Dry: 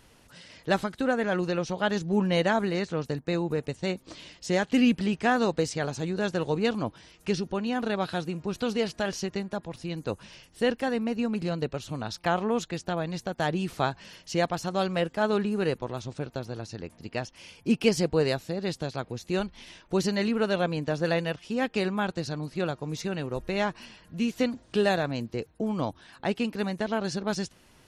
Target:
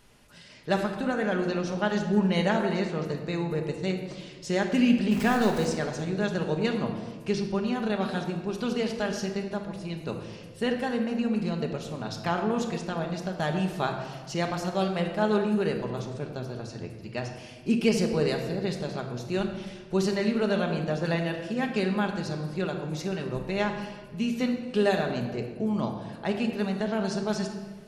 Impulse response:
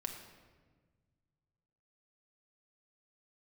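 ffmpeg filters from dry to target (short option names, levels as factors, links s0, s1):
-filter_complex "[0:a]asettb=1/sr,asplit=3[s0][s1][s2];[s0]atrim=end=5.114[s3];[s1]atrim=start=5.11:end=5.65,asetpts=PTS-STARTPTS,afade=t=in:d=0.004:c=qsin,afade=t=out:st=0.536:d=0.004:c=qsin,aeval=exprs='val(0)+0.5*0.0316*sgn(val(0))':c=same[s4];[s2]atrim=start=5.646[s5];[s3][s4]acrossfade=d=0.004:c1=hsin:c2=qsin[s6];[s6][s5]acrossfade=d=0.004:c1=qsin:c2=hsin[s7];[1:a]atrim=start_sample=2205[s8];[s7][s8]afir=irnorm=-1:irlink=0"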